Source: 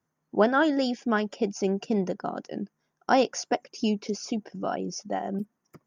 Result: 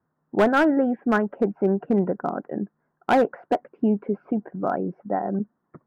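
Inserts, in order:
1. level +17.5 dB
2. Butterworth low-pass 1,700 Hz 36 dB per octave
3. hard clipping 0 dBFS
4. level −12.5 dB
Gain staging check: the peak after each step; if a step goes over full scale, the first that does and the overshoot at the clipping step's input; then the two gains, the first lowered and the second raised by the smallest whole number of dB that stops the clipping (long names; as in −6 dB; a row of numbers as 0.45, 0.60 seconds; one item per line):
+9.0, +8.5, 0.0, −12.5 dBFS
step 1, 8.5 dB
step 1 +8.5 dB, step 4 −3.5 dB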